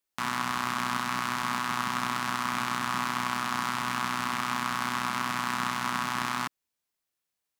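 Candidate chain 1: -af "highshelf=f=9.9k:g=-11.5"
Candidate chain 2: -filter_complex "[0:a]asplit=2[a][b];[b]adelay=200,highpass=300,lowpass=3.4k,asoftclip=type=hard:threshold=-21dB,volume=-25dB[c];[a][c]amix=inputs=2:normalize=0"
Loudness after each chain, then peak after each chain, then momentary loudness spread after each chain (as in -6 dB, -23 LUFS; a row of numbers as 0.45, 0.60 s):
-30.0, -29.5 LUFS; -12.0, -11.5 dBFS; 1, 1 LU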